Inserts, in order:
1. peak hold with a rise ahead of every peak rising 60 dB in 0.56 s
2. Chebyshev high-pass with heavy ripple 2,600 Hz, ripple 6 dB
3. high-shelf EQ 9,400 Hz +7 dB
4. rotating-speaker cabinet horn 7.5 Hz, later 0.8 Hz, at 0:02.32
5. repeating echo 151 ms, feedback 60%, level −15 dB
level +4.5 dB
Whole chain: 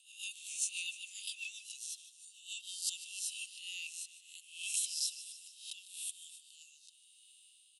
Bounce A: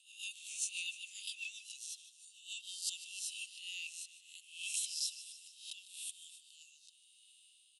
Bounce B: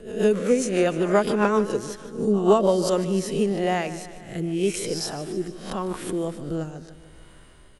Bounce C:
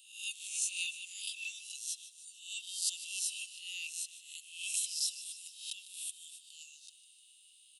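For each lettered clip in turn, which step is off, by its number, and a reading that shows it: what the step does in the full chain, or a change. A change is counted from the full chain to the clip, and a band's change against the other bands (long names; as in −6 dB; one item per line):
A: 3, change in momentary loudness spread −2 LU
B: 2, change in crest factor −9.0 dB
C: 4, change in momentary loudness spread −4 LU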